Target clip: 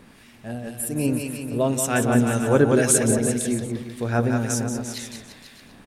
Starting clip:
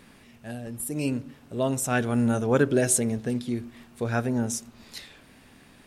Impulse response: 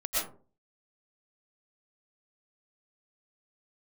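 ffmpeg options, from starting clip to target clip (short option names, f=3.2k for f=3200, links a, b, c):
-filter_complex "[0:a]acontrast=21,aecho=1:1:180|342|487.8|619|737.1:0.631|0.398|0.251|0.158|0.1,acrossover=split=1300[a][b];[a]aeval=exprs='val(0)*(1-0.5/2+0.5/2*cos(2*PI*1.9*n/s))':c=same[c];[b]aeval=exprs='val(0)*(1-0.5/2-0.5/2*cos(2*PI*1.9*n/s))':c=same[d];[c][d]amix=inputs=2:normalize=0"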